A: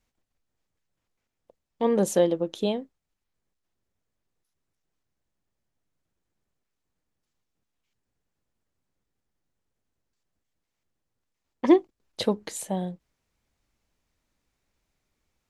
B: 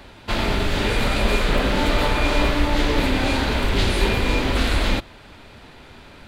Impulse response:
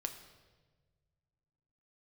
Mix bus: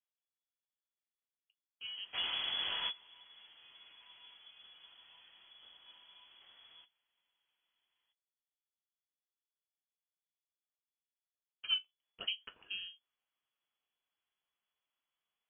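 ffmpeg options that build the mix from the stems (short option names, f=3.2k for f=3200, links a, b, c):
-filter_complex "[0:a]bass=f=250:g=-9,treble=f=4k:g=12,volume=-7dB,afade=t=in:st=11.5:d=0.56:silence=0.316228,asplit=2[a][b];[1:a]adelay=1850,volume=-13dB[c];[b]apad=whole_len=358125[d];[c][d]sidechaingate=range=-24dB:threshold=-59dB:ratio=16:detection=peak[e];[a][e]amix=inputs=2:normalize=0,flanger=delay=5.1:depth=6.6:regen=-55:speed=0.21:shape=triangular,lowpass=f=2.9k:t=q:w=0.5098,lowpass=f=2.9k:t=q:w=0.6013,lowpass=f=2.9k:t=q:w=0.9,lowpass=f=2.9k:t=q:w=2.563,afreqshift=-3400"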